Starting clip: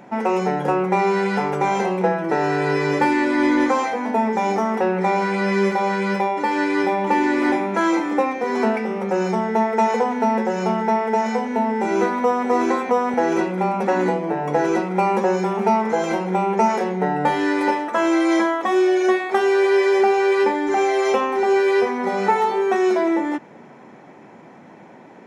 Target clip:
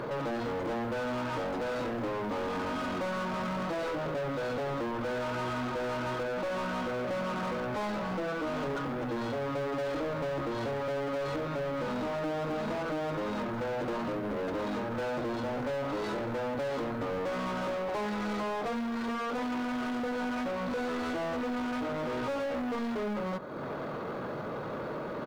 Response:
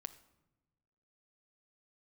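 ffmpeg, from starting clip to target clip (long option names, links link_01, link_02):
-filter_complex "[0:a]acompressor=threshold=-38dB:ratio=2.5,asetrate=27781,aresample=44100,atempo=1.5874,asplit=2[link_01][link_02];[link_02]highpass=frequency=720:poles=1,volume=30dB,asoftclip=type=tanh:threshold=-21.5dB[link_03];[link_01][link_03]amix=inputs=2:normalize=0,lowpass=frequency=5300:poles=1,volume=-6dB,acrusher=bits=9:mode=log:mix=0:aa=0.000001,asplit=2[link_04][link_05];[1:a]atrim=start_sample=2205,lowpass=2100[link_06];[link_05][link_06]afir=irnorm=-1:irlink=0,volume=-6dB[link_07];[link_04][link_07]amix=inputs=2:normalize=0,volume=-7.5dB"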